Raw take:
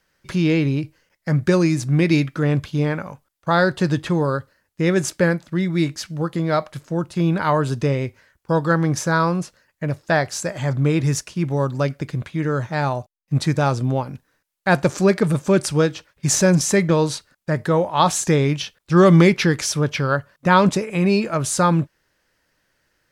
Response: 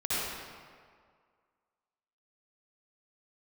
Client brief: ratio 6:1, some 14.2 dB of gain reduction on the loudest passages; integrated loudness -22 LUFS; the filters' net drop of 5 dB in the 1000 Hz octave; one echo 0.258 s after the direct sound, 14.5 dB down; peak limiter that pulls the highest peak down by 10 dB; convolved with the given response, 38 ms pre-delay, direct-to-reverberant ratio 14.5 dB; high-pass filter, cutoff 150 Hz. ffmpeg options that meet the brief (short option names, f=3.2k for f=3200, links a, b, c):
-filter_complex "[0:a]highpass=150,equalizer=f=1k:t=o:g=-6.5,acompressor=threshold=-26dB:ratio=6,alimiter=limit=-22dB:level=0:latency=1,aecho=1:1:258:0.188,asplit=2[a][b];[1:a]atrim=start_sample=2205,adelay=38[c];[b][c]afir=irnorm=-1:irlink=0,volume=-24dB[d];[a][d]amix=inputs=2:normalize=0,volume=11dB"